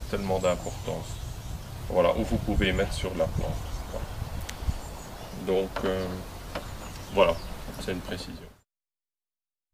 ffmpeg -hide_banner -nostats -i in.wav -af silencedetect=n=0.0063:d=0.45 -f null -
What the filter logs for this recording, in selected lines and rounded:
silence_start: 8.51
silence_end: 9.74 | silence_duration: 1.22